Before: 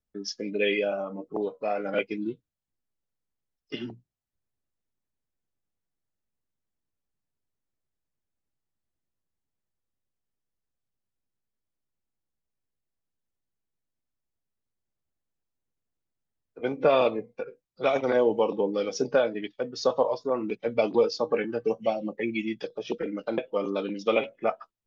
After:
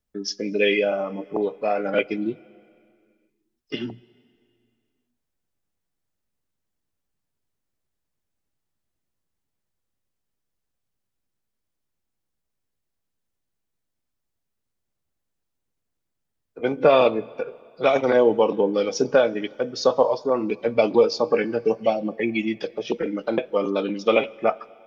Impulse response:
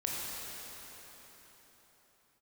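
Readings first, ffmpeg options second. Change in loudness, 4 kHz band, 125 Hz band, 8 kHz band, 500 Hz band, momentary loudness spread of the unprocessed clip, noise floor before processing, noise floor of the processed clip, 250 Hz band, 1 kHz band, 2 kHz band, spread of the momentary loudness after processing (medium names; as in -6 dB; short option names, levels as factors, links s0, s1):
+5.5 dB, +5.5 dB, +5.5 dB, no reading, +5.5 dB, 12 LU, -85 dBFS, -80 dBFS, +5.5 dB, +5.5 dB, +5.5 dB, 12 LU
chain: -filter_complex "[0:a]asplit=2[s0][s1];[1:a]atrim=start_sample=2205,asetrate=79380,aresample=44100[s2];[s1][s2]afir=irnorm=-1:irlink=0,volume=0.0944[s3];[s0][s3]amix=inputs=2:normalize=0,volume=1.78"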